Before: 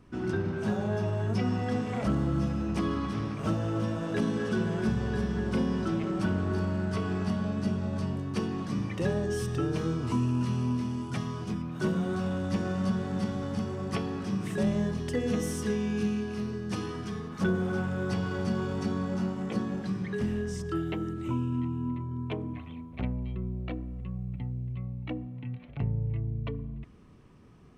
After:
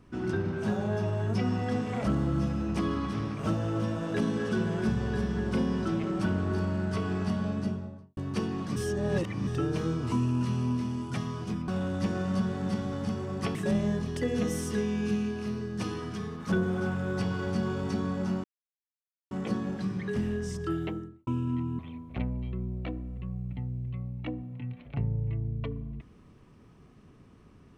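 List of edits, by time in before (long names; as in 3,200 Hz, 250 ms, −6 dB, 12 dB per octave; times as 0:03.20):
0:07.48–0:08.17: fade out and dull
0:08.76–0:09.47: reverse
0:11.68–0:12.18: remove
0:14.05–0:14.47: remove
0:19.36: splice in silence 0.87 s
0:20.84–0:21.32: fade out and dull
0:21.84–0:22.62: remove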